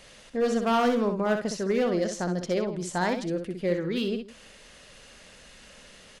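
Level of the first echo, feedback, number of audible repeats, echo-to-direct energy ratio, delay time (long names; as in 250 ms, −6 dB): −6.5 dB, repeats not evenly spaced, 2, −6.5 dB, 62 ms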